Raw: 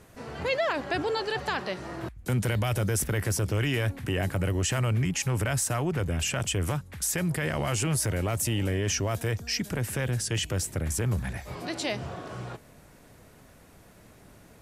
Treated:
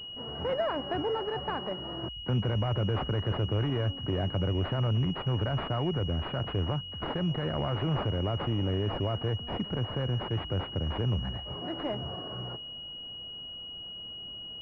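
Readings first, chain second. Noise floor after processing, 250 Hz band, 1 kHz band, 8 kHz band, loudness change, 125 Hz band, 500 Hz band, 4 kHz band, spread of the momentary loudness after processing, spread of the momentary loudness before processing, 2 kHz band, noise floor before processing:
−42 dBFS, −1.5 dB, −1.5 dB, below −35 dB, −3.0 dB, −1.5 dB, −1.5 dB, +2.5 dB, 10 LU, 9 LU, −10.0 dB, −54 dBFS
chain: bad sample-rate conversion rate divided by 4×, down none, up hold
switching amplifier with a slow clock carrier 2,900 Hz
level −1.5 dB

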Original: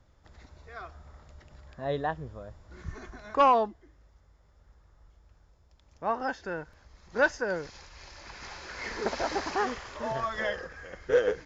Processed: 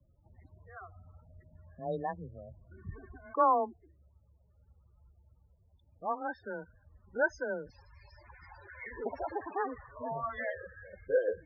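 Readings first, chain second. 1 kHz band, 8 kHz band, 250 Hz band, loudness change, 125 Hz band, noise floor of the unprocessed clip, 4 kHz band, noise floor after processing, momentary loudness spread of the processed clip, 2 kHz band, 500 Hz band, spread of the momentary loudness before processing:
−4.5 dB, can't be measured, −5.5 dB, −5.0 dB, −5.5 dB, −62 dBFS, below −20 dB, −67 dBFS, 21 LU, −6.0 dB, −5.0 dB, 19 LU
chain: spectral peaks only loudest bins 16
frequency shifter +18 Hz
level −4.5 dB

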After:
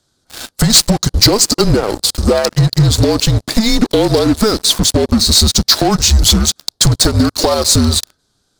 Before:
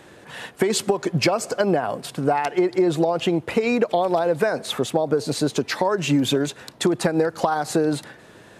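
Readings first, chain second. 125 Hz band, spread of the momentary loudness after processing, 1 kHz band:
+15.5 dB, 5 LU, +3.0 dB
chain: high-pass filter 56 Hz 24 dB per octave
frequency shifter −220 Hz
high shelf with overshoot 3,300 Hz +10 dB, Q 3
leveller curve on the samples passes 5
level −9 dB

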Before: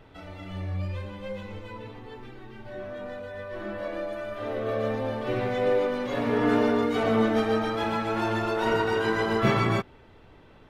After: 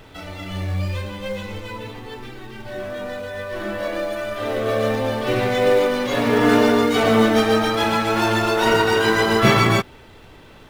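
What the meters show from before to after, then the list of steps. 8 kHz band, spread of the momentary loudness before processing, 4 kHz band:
can't be measured, 18 LU, +13.0 dB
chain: high-shelf EQ 3,000 Hz +10.5 dB
in parallel at −12 dB: log-companded quantiser 4 bits
on the sum: level +5 dB

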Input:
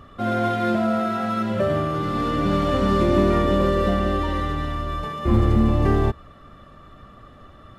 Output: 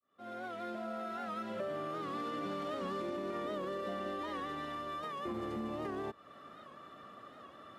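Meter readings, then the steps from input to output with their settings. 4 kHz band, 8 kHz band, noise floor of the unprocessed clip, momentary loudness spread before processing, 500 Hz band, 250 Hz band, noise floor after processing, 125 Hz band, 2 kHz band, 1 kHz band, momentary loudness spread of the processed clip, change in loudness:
−14.5 dB, can't be measured, −47 dBFS, 8 LU, −16.5 dB, −20.0 dB, −56 dBFS, −29.0 dB, −15.0 dB, −15.0 dB, 14 LU, −18.0 dB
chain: fade in at the beginning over 1.86 s
high-pass filter 280 Hz 12 dB per octave
brickwall limiter −16 dBFS, peak gain reduction 7 dB
downward compressor 2.5 to 1, threshold −37 dBFS, peak gain reduction 10.5 dB
wow of a warped record 78 rpm, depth 100 cents
level −4 dB

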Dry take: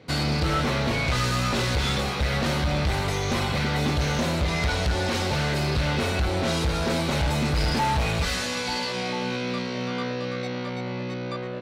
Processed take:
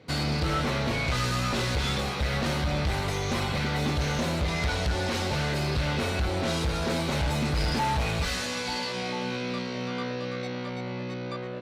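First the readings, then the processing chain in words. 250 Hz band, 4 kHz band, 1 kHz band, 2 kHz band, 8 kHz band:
−3.0 dB, −3.0 dB, −3.0 dB, −3.0 dB, −3.0 dB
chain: level −3 dB
Opus 64 kbit/s 48,000 Hz

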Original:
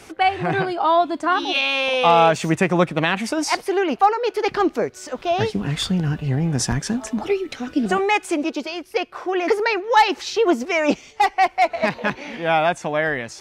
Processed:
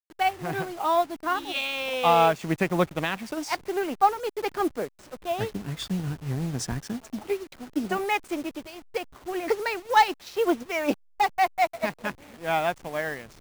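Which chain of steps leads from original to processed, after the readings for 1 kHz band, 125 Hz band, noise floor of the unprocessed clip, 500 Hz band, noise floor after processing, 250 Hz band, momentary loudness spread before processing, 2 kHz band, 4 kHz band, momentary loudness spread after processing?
−5.5 dB, −8.5 dB, −45 dBFS, −7.0 dB, −56 dBFS, −8.0 dB, 8 LU, −7.5 dB, −8.0 dB, 12 LU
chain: hold until the input has moved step −28.5 dBFS
expander for the loud parts 1.5 to 1, over −34 dBFS
level −3.5 dB

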